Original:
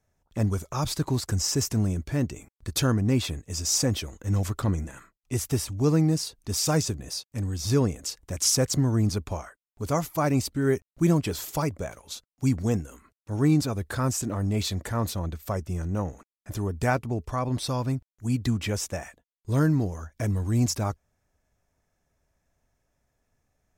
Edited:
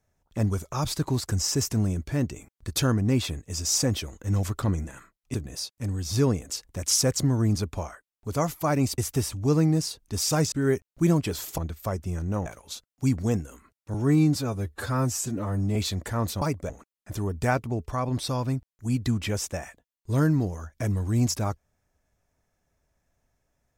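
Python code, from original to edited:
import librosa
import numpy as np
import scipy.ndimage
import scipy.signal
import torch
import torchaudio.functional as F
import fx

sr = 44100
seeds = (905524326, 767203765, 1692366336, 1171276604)

y = fx.edit(x, sr, fx.move(start_s=5.34, length_s=1.54, to_s=10.52),
    fx.swap(start_s=11.58, length_s=0.28, other_s=15.21, other_length_s=0.88),
    fx.stretch_span(start_s=13.34, length_s=1.21, factor=1.5), tone=tone)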